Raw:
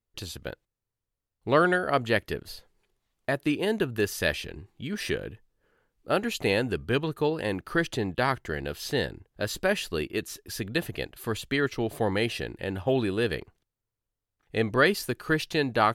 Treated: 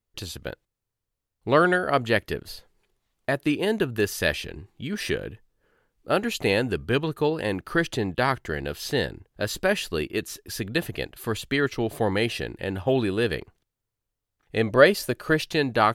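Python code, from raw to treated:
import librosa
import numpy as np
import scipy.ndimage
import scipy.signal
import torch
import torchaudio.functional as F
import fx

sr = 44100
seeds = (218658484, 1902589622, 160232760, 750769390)

y = fx.peak_eq(x, sr, hz=580.0, db=11.5, octaves=0.28, at=(14.66, 15.41))
y = F.gain(torch.from_numpy(y), 2.5).numpy()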